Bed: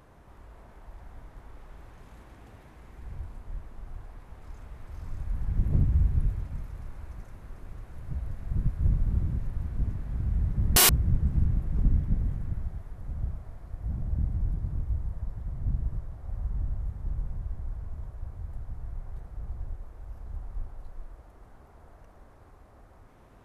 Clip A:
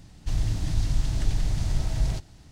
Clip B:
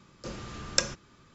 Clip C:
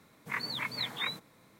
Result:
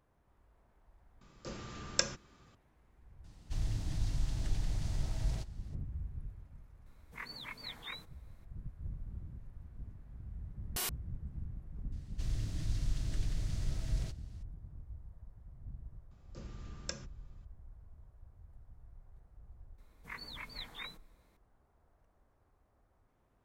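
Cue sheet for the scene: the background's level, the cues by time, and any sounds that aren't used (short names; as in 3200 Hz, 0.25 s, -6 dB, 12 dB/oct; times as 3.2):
bed -18 dB
1.21 add B -5 dB
3.24 add A -9.5 dB
6.86 add C -10.5 dB
11.92 add A -10 dB + bell 840 Hz -8.5 dB 0.46 oct
16.11 add B -16 dB + bell 110 Hz +9 dB 2.8 oct
19.78 add C -11 dB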